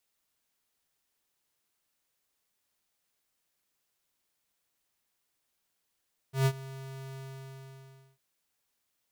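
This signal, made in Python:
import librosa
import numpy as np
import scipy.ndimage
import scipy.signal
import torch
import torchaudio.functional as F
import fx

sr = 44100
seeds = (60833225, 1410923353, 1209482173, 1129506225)

y = fx.adsr_tone(sr, wave='square', hz=134.0, attack_ms=130.0, decay_ms=60.0, sustain_db=-19.5, held_s=0.83, release_ms=1020.0, level_db=-23.0)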